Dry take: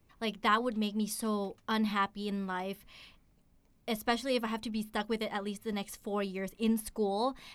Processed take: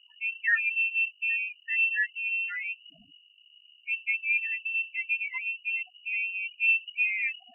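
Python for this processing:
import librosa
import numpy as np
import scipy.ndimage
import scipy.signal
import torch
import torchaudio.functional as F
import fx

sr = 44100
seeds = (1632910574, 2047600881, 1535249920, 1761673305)

y = fx.spec_topn(x, sr, count=4)
y = fx.add_hum(y, sr, base_hz=50, snr_db=32)
y = fx.freq_invert(y, sr, carrier_hz=2900)
y = F.gain(torch.from_numpy(y), 5.5).numpy()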